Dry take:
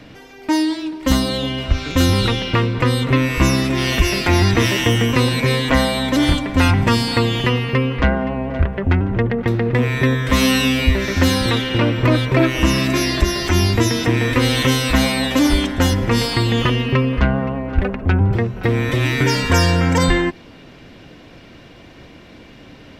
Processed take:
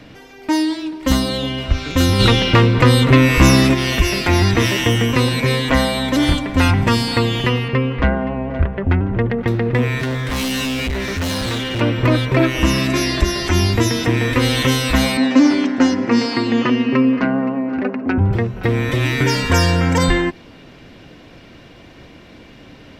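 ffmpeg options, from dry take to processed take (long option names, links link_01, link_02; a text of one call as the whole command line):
ffmpeg -i in.wav -filter_complex "[0:a]asplit=3[link_01][link_02][link_03];[link_01]afade=type=out:start_time=2.19:duration=0.02[link_04];[link_02]acontrast=70,afade=type=in:start_time=2.19:duration=0.02,afade=type=out:start_time=3.73:duration=0.02[link_05];[link_03]afade=type=in:start_time=3.73:duration=0.02[link_06];[link_04][link_05][link_06]amix=inputs=3:normalize=0,asettb=1/sr,asplit=3[link_07][link_08][link_09];[link_07]atrim=end=7.684[link_10];[link_08]atrim=start=7.68:end=9.21,asetpts=PTS-STARTPTS,afade=type=in:duration=0.004:curve=qsin,afade=type=out:start_time=1.526:duration=0.004:curve=qsin,aemphasis=mode=reproduction:type=50kf[link_11];[link_09]atrim=start=9.206[link_12];[link_10][link_11]acrossfade=duration=0.004:curve1=hsin:curve2=qsin[link_13];[link_13][link_12]acrossfade=duration=0.004:curve1=qsin:curve2=hsin,asettb=1/sr,asplit=3[link_14][link_15][link_16];[link_14]atrim=end=9.994[link_17];[link_15]atrim=start=9.99:end=11.81,asetpts=PTS-STARTPTS,afade=type=in:duration=0.004:curve=qsin,afade=type=out:start_time=1.816:duration=0.004:curve=qsin,asoftclip=type=hard:threshold=-19dB[link_18];[link_16]atrim=start=11.806[link_19];[link_17][link_18]acrossfade=duration=0.004:curve1=hsin:curve2=qsin[link_20];[link_20][link_19]acrossfade=duration=0.004:curve1=qsin:curve2=hsin,asettb=1/sr,asplit=3[link_21][link_22][link_23];[link_21]atrim=end=12.874[link_24];[link_22]atrim=start=12.87:end=13.71,asetpts=PTS-STARTPTS,afade=type=in:duration=0.004:curve=qsin,afade=type=out:start_time=0.836:duration=0.004:curve=qsin,lowpass=frequency=12000:width=0.5412,lowpass=frequency=12000:width=1.3066[link_25];[link_23]atrim=start=13.706[link_26];[link_24][link_25]acrossfade=duration=0.004:curve1=hsin:curve2=qsin[link_27];[link_27][link_26]acrossfade=duration=0.004:curve1=qsin:curve2=hsin,asettb=1/sr,asplit=3[link_28][link_29][link_30];[link_28]atrim=end=15.174[link_31];[link_29]atrim=start=15.17:end=18.18,asetpts=PTS-STARTPTS,afade=type=in:duration=0.004:curve=qsin,afade=type=out:start_time=3.006:duration=0.004:curve=qsin,highpass=frequency=160:width=0.5412,highpass=frequency=160:width=1.3066,equalizer=frequency=180:width_type=q:width=4:gain=-10,equalizer=frequency=250:width_type=q:width=4:gain=10,equalizer=frequency=3400:width_type=q:width=4:gain=-10,lowpass=frequency=6100:width=0.5412,lowpass=frequency=6100:width=1.3066[link_32];[link_30]atrim=start=18.176[link_33];[link_31][link_32]acrossfade=duration=0.004:curve1=hsin:curve2=qsin[link_34];[link_34][link_33]acrossfade=duration=0.004:curve1=qsin:curve2=hsin" out.wav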